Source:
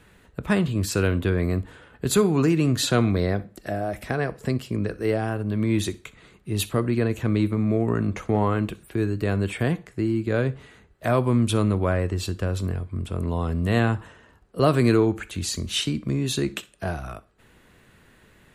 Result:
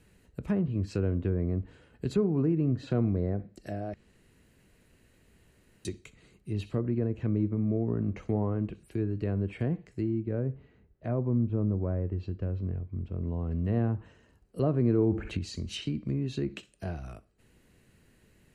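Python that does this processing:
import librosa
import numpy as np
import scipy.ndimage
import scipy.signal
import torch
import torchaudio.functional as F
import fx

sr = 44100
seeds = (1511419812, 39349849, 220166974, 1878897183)

y = fx.spacing_loss(x, sr, db_at_10k=35, at=(10.2, 13.51))
y = fx.env_flatten(y, sr, amount_pct=50, at=(14.97, 15.37), fade=0.02)
y = fx.edit(y, sr, fx.room_tone_fill(start_s=3.94, length_s=1.91), tone=tone)
y = fx.env_lowpass_down(y, sr, base_hz=1100.0, full_db=-18.0)
y = fx.peak_eq(y, sr, hz=1200.0, db=-10.0, octaves=1.9)
y = fx.notch(y, sr, hz=3500.0, q=7.2)
y = y * librosa.db_to_amplitude(-5.0)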